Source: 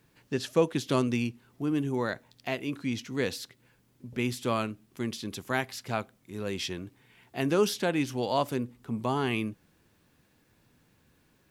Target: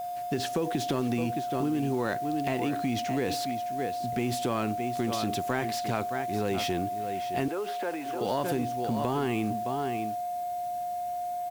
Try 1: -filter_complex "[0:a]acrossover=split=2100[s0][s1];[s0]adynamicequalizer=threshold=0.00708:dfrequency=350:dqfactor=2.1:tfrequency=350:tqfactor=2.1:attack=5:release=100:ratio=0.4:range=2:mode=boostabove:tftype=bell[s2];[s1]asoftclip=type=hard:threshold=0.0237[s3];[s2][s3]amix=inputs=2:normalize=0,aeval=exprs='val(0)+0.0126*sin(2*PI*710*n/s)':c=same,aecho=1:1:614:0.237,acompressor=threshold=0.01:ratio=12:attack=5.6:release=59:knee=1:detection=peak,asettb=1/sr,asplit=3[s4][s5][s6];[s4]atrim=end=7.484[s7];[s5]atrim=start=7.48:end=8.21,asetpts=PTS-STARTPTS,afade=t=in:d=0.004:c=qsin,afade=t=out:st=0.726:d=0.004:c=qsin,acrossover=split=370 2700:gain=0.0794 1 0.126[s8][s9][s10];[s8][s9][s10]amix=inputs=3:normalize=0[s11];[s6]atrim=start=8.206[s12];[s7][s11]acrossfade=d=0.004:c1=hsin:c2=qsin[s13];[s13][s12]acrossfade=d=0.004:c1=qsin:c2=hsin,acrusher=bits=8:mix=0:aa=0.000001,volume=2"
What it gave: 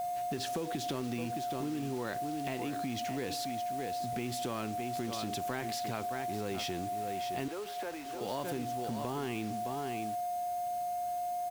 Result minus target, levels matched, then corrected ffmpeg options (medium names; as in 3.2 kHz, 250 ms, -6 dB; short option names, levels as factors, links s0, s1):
compression: peak gain reduction +8 dB; hard clipper: distortion -7 dB
-filter_complex "[0:a]acrossover=split=2100[s0][s1];[s0]adynamicequalizer=threshold=0.00708:dfrequency=350:dqfactor=2.1:tfrequency=350:tqfactor=2.1:attack=5:release=100:ratio=0.4:range=2:mode=boostabove:tftype=bell[s2];[s1]asoftclip=type=hard:threshold=0.01[s3];[s2][s3]amix=inputs=2:normalize=0,aeval=exprs='val(0)+0.0126*sin(2*PI*710*n/s)':c=same,aecho=1:1:614:0.237,acompressor=threshold=0.0266:ratio=12:attack=5.6:release=59:knee=1:detection=peak,asettb=1/sr,asplit=3[s4][s5][s6];[s4]atrim=end=7.484[s7];[s5]atrim=start=7.48:end=8.21,asetpts=PTS-STARTPTS,afade=t=in:d=0.004:c=qsin,afade=t=out:st=0.726:d=0.004:c=qsin,acrossover=split=370 2700:gain=0.0794 1 0.126[s8][s9][s10];[s8][s9][s10]amix=inputs=3:normalize=0[s11];[s6]atrim=start=8.206[s12];[s7][s11]acrossfade=d=0.004:c1=hsin:c2=qsin[s13];[s13][s12]acrossfade=d=0.004:c1=qsin:c2=hsin,acrusher=bits=8:mix=0:aa=0.000001,volume=2"